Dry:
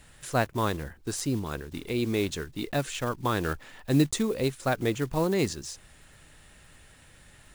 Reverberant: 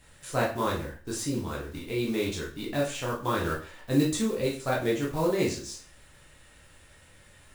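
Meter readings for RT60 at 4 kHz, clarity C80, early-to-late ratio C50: 0.40 s, 12.0 dB, 7.0 dB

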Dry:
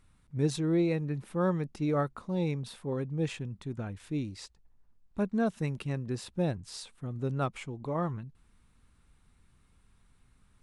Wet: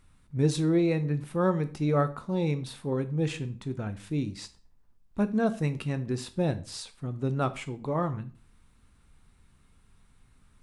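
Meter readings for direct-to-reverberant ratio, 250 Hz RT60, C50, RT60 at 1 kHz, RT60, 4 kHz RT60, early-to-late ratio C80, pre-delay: 10.0 dB, 0.40 s, 16.0 dB, 0.40 s, 0.40 s, 0.35 s, 20.5 dB, 7 ms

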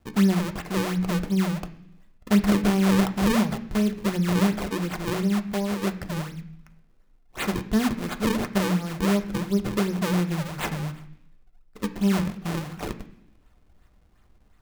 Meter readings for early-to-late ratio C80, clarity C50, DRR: 16.0 dB, 13.5 dB, 6.0 dB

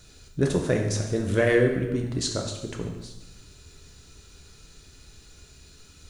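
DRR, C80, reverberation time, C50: 1.5 dB, 7.5 dB, 1.0 s, 5.5 dB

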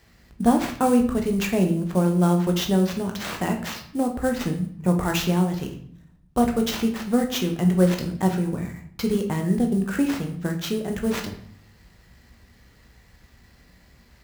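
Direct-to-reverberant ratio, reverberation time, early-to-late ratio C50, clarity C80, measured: 3.0 dB, 0.60 s, 9.5 dB, 13.5 dB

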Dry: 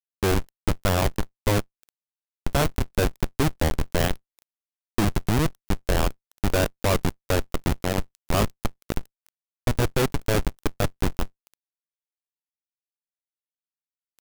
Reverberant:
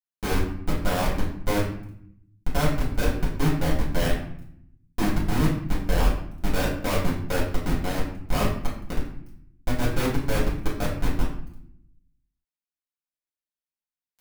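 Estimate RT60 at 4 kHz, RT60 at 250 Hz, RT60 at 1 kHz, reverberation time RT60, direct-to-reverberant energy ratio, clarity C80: 0.50 s, 1.1 s, 0.70 s, 0.70 s, -7.0 dB, 8.5 dB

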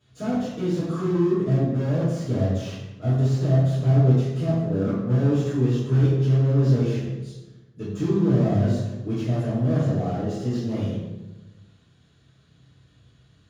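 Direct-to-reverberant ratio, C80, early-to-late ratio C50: -11.5 dB, 3.0 dB, 0.0 dB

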